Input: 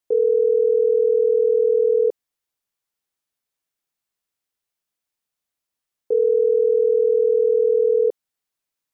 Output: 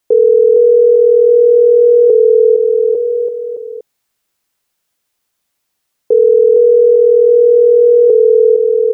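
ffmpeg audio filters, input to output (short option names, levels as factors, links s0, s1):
-af "aecho=1:1:460|851|1183|1466|1706:0.631|0.398|0.251|0.158|0.1,alimiter=level_in=4.47:limit=0.891:release=50:level=0:latency=1,volume=0.891"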